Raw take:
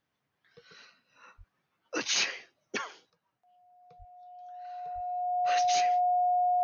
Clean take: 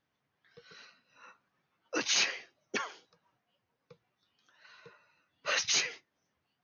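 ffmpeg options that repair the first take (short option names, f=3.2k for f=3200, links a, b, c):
-filter_complex "[0:a]bandreject=f=720:w=30,asplit=3[a][b][c];[a]afade=t=out:st=1.37:d=0.02[d];[b]highpass=f=140:w=0.5412,highpass=f=140:w=1.3066,afade=t=in:st=1.37:d=0.02,afade=t=out:st=1.49:d=0.02[e];[c]afade=t=in:st=1.49:d=0.02[f];[d][e][f]amix=inputs=3:normalize=0,asplit=3[g][h][i];[g]afade=t=out:st=3.98:d=0.02[j];[h]highpass=f=140:w=0.5412,highpass=f=140:w=1.3066,afade=t=in:st=3.98:d=0.02,afade=t=out:st=4.1:d=0.02[k];[i]afade=t=in:st=4.1:d=0.02[l];[j][k][l]amix=inputs=3:normalize=0,asplit=3[m][n][o];[m]afade=t=out:st=4.94:d=0.02[p];[n]highpass=f=140:w=0.5412,highpass=f=140:w=1.3066,afade=t=in:st=4.94:d=0.02,afade=t=out:st=5.06:d=0.02[q];[o]afade=t=in:st=5.06:d=0.02[r];[p][q][r]amix=inputs=3:normalize=0,asetnsamples=n=441:p=0,asendcmd='3.1 volume volume 5.5dB',volume=0dB"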